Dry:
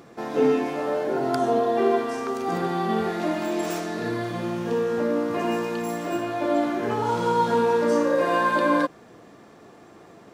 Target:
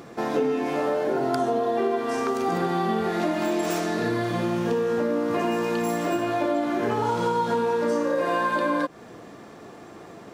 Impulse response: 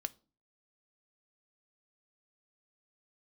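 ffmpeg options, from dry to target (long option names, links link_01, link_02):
-af "acompressor=threshold=-26dB:ratio=6,volume=5dB"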